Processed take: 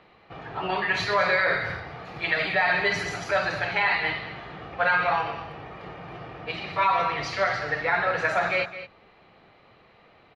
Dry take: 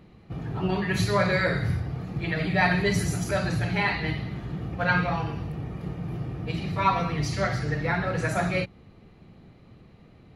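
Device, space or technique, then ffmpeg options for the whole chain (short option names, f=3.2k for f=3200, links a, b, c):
DJ mixer with the lows and highs turned down: -filter_complex "[0:a]acrossover=split=520 5000:gain=0.0891 1 0.0794[a][b][c];[a][b][c]amix=inputs=3:normalize=0,alimiter=limit=-20.5dB:level=0:latency=1:release=38,asettb=1/sr,asplit=3[d][e][f];[d]atrim=end=2.054[g];[e]atrim=start=2.05:end=2.55,asetpts=PTS-STARTPTS,afade=t=in:d=0.004:c=qsin,afade=t=out:st=0.496:d=0.004:c=qsin,aemphasis=mode=production:type=50kf[h];[f]atrim=start=2.546[i];[g][h]acrossfade=d=0.004:c1=hsin:c2=qsin[j];[j][i]acrossfade=d=0.004:c1=qsin:c2=hsin,highshelf=f=5.9k:g=-6,aecho=1:1:212:0.224,volume=7.5dB"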